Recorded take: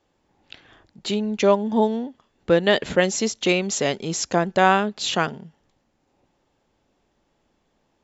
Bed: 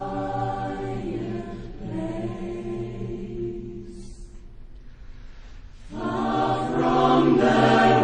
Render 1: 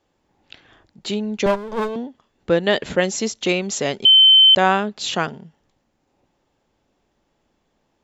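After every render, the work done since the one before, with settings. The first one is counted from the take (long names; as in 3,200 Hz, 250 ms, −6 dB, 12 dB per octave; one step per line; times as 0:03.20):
0:01.46–0:01.96: lower of the sound and its delayed copy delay 1.9 ms
0:04.05–0:04.55: beep over 3,080 Hz −7 dBFS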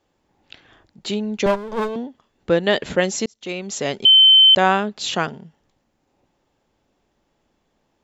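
0:03.26–0:03.96: fade in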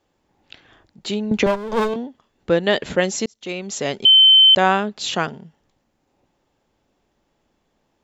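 0:01.31–0:01.94: multiband upward and downward compressor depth 100%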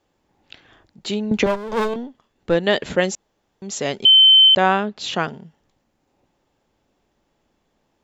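0:01.44–0:02.55: gain on one half-wave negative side −3 dB
0:03.15–0:03.62: fill with room tone
0:04.48–0:05.27: high-frequency loss of the air 76 metres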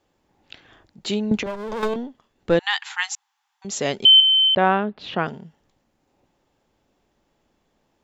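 0:01.35–0:01.83: downward compressor 5 to 1, threshold −25 dBFS
0:02.59–0:03.65: linear-phase brick-wall high-pass 750 Hz
0:04.20–0:05.26: high-frequency loss of the air 320 metres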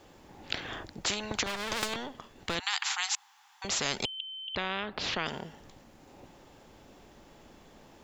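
downward compressor 2 to 1, threshold −23 dBFS, peak gain reduction 7.5 dB
every bin compressed towards the loudest bin 4 to 1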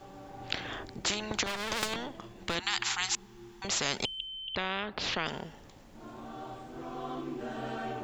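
mix in bed −20.5 dB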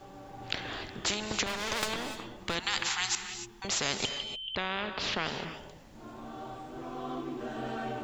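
reverb whose tail is shaped and stops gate 320 ms rising, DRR 8 dB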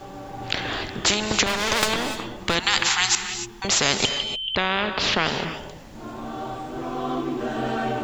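level +10.5 dB
brickwall limiter −3 dBFS, peak gain reduction 3 dB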